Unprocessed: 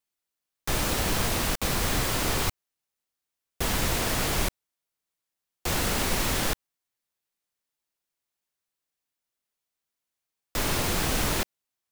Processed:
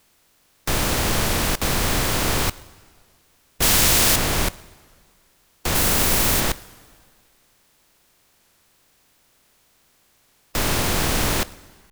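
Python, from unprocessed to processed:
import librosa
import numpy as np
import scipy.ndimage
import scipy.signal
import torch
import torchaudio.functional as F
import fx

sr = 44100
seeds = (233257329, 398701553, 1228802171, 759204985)

p1 = fx.bin_compress(x, sr, power=0.6)
p2 = fx.high_shelf(p1, sr, hz=7800.0, db=9.0, at=(5.75, 6.41))
p3 = fx.rev_plate(p2, sr, seeds[0], rt60_s=1.9, hf_ratio=0.9, predelay_ms=0, drr_db=17.5)
p4 = fx.quant_dither(p3, sr, seeds[1], bits=6, dither='none')
p5 = p3 + F.gain(torch.from_numpy(p4), -10.0).numpy()
p6 = fx.high_shelf(p5, sr, hz=2600.0, db=10.0, at=(3.62, 4.16))
y = fx.record_warp(p6, sr, rpm=33.33, depth_cents=160.0)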